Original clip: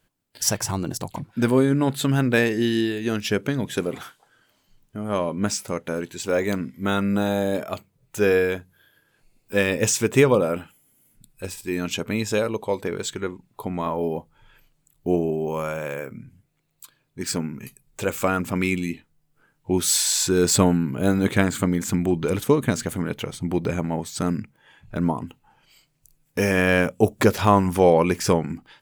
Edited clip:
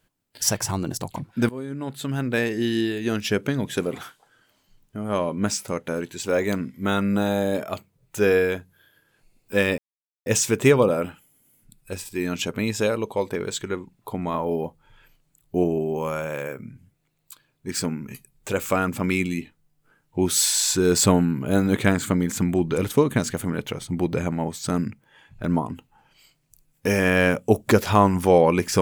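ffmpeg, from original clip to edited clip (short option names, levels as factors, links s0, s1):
-filter_complex "[0:a]asplit=3[s0][s1][s2];[s0]atrim=end=1.49,asetpts=PTS-STARTPTS,afade=t=out:st=1.486:d=0.004:c=hsin:silence=0.112202[s3];[s1]atrim=start=1.49:end=9.78,asetpts=PTS-STARTPTS,afade=t=in:d=1.52:silence=0.112202,afade=t=out:st=8.286:d=0.004:c=hsin,apad=pad_dur=0.48[s4];[s2]atrim=start=9.78,asetpts=PTS-STARTPTS,afade=t=in:d=0.004:c=hsin[s5];[s3][s4][s5]concat=n=3:v=0:a=1"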